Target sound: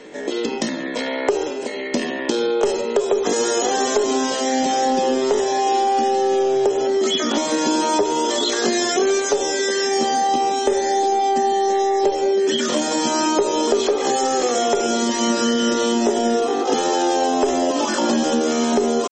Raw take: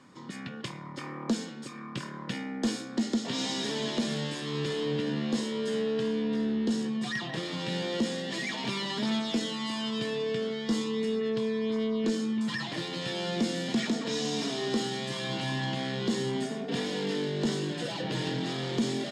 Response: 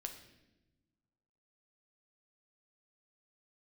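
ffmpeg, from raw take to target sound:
-filter_complex "[0:a]asplit=2[s0][s1];[1:a]atrim=start_sample=2205,afade=t=out:st=0.25:d=0.01,atrim=end_sample=11466,lowshelf=f=400:g=11.5[s2];[s1][s2]afir=irnorm=-1:irlink=0,volume=0.944[s3];[s0][s3]amix=inputs=2:normalize=0,acontrast=22,asetrate=78577,aresample=44100,atempo=0.561231,acompressor=threshold=0.112:ratio=6,volume=1.68" -ar 44100 -c:a libmp3lame -b:a 32k

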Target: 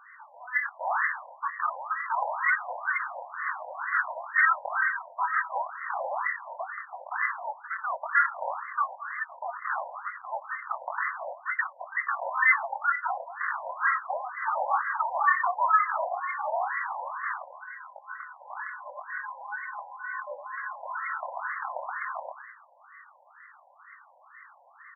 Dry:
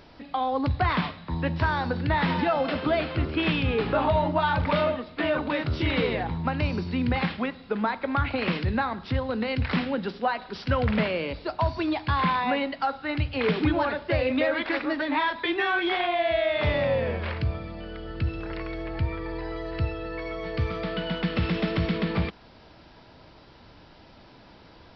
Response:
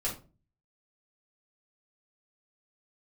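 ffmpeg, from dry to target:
-af "acontrast=69,aresample=11025,aeval=exprs='0.501*sin(PI/2*1.78*val(0)/0.501)':c=same,aresample=44100,flanger=delay=20:depth=6.4:speed=2,aecho=1:1:214:0.211,lowpass=f=2400:t=q:w=0.5098,lowpass=f=2400:t=q:w=0.6013,lowpass=f=2400:t=q:w=0.9,lowpass=f=2400:t=q:w=2.563,afreqshift=-2800,afftfilt=real='re*between(b*sr/1024,700*pow(1500/700,0.5+0.5*sin(2*PI*2.1*pts/sr))/1.41,700*pow(1500/700,0.5+0.5*sin(2*PI*2.1*pts/sr))*1.41)':imag='im*between(b*sr/1024,700*pow(1500/700,0.5+0.5*sin(2*PI*2.1*pts/sr))/1.41,700*pow(1500/700,0.5+0.5*sin(2*PI*2.1*pts/sr))*1.41)':win_size=1024:overlap=0.75,volume=0.631"

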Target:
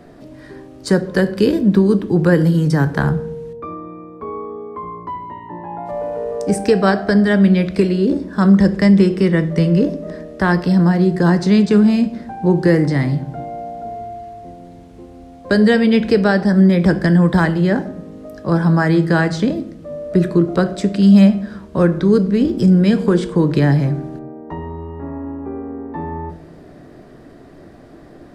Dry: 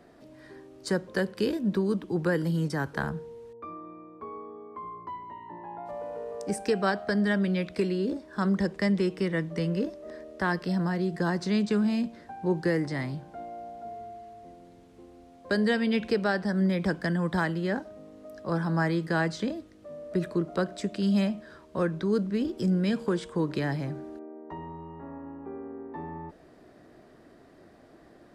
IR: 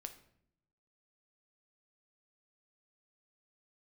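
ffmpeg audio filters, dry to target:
-filter_complex "[0:a]asplit=2[s0][s1];[1:a]atrim=start_sample=2205,lowshelf=f=370:g=10[s2];[s1][s2]afir=irnorm=-1:irlink=0,volume=2.82[s3];[s0][s3]amix=inputs=2:normalize=0,volume=1.12"

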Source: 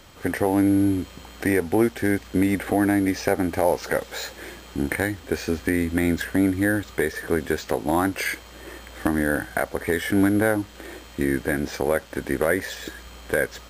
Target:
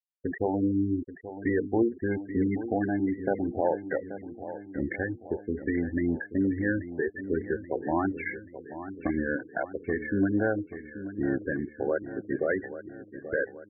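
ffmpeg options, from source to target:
-af "equalizer=f=360:t=o:w=0.23:g=3,bandreject=f=60:t=h:w=6,bandreject=f=120:t=h:w=6,bandreject=f=180:t=h:w=6,bandreject=f=240:t=h:w=6,bandreject=f=300:t=h:w=6,bandreject=f=360:t=h:w=6,bandreject=f=420:t=h:w=6,bandreject=f=480:t=h:w=6,afftfilt=real='re*gte(hypot(re,im),0.158)':imag='im*gte(hypot(re,im),0.158)':win_size=1024:overlap=0.75,aecho=1:1:832|1664|2496|3328|4160:0.237|0.123|0.0641|0.0333|0.0173,volume=0.531"

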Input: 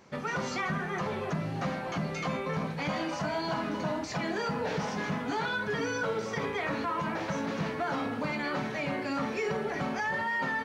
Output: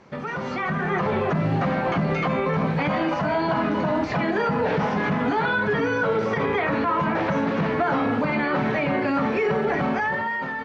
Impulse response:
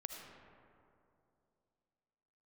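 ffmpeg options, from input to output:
-filter_complex "[0:a]alimiter=level_in=1.68:limit=0.0631:level=0:latency=1:release=64,volume=0.596,dynaudnorm=f=190:g=7:m=2.37,aemphasis=mode=reproduction:type=50fm,acrossover=split=3700[s0][s1];[s1]acompressor=threshold=0.00126:ratio=4:attack=1:release=60[s2];[s0][s2]amix=inputs=2:normalize=0,highshelf=f=7000:g=-4.5,volume=2"

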